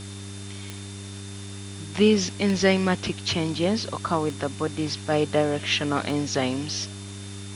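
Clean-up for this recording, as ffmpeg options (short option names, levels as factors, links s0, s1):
-af "adeclick=t=4,bandreject=f=99:t=h:w=4,bandreject=f=198:t=h:w=4,bandreject=f=297:t=h:w=4,bandreject=f=396:t=h:w=4,bandreject=f=3600:w=30,afwtdn=0.0079"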